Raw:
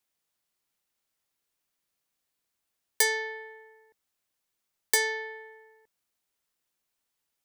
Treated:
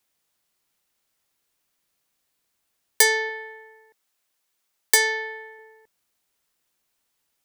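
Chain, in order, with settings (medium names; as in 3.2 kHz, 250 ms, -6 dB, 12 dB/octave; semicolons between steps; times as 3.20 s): 3.29–5.59 s: bass shelf 250 Hz -10.5 dB; trim +7 dB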